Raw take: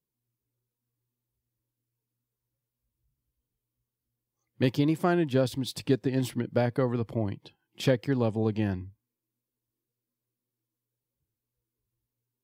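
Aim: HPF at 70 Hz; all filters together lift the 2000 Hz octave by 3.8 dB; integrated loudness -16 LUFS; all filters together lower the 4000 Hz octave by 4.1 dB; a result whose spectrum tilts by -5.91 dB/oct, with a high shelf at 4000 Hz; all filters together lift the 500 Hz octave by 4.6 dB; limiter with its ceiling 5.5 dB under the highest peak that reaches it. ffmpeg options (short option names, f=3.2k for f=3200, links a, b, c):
-af "highpass=70,equalizer=f=500:t=o:g=5.5,equalizer=f=2k:t=o:g=7,highshelf=f=4k:g=-8.5,equalizer=f=4k:t=o:g=-3,volume=11.5dB,alimiter=limit=-2dB:level=0:latency=1"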